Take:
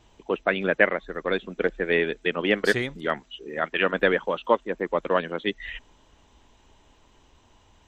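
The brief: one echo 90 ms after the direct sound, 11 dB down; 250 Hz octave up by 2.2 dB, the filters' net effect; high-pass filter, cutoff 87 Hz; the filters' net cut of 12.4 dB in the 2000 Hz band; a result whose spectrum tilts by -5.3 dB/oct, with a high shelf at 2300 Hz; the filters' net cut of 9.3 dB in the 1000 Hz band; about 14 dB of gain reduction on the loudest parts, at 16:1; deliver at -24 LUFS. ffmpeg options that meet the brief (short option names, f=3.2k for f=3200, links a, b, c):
-af "highpass=87,equalizer=f=250:t=o:g=4,equalizer=f=1k:t=o:g=-8,equalizer=f=2k:t=o:g=-8.5,highshelf=f=2.3k:g=-9,acompressor=threshold=-31dB:ratio=16,aecho=1:1:90:0.282,volume=13.5dB"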